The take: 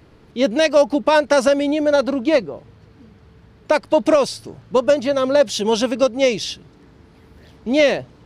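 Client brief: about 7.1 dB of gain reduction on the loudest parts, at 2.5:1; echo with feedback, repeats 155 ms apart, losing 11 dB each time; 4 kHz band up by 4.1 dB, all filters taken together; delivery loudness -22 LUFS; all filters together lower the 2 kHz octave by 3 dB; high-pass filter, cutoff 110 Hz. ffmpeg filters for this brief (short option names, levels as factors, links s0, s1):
-af "highpass=110,equalizer=f=2000:t=o:g=-6,equalizer=f=4000:t=o:g=7,acompressor=threshold=0.0891:ratio=2.5,aecho=1:1:155|310|465:0.282|0.0789|0.0221,volume=1.19"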